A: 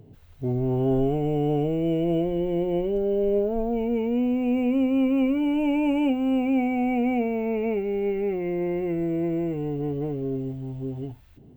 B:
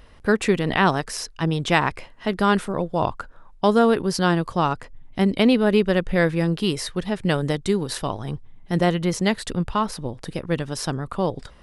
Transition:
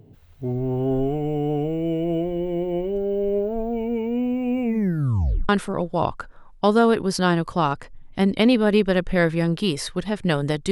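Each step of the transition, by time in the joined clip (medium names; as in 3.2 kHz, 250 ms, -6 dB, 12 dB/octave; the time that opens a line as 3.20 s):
A
4.62 s: tape stop 0.87 s
5.49 s: go over to B from 2.49 s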